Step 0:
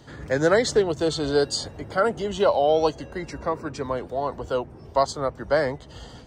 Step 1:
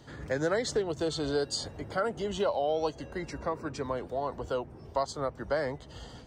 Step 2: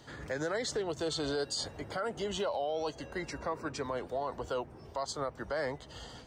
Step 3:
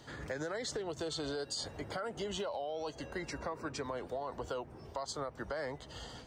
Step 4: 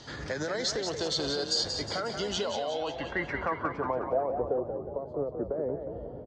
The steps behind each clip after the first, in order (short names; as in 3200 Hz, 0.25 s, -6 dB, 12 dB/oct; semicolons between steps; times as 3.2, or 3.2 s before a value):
compressor 2:1, threshold -25 dBFS, peak gain reduction 6.5 dB; gain -4 dB
low shelf 470 Hz -6.5 dB; limiter -27.5 dBFS, peak gain reduction 8 dB; gain +2 dB
compressor, threshold -35 dBFS, peak gain reduction 6 dB
low-pass sweep 5400 Hz -> 430 Hz, 2.35–4.53; frequency-shifting echo 0.181 s, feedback 50%, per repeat +35 Hz, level -7 dB; gain +5 dB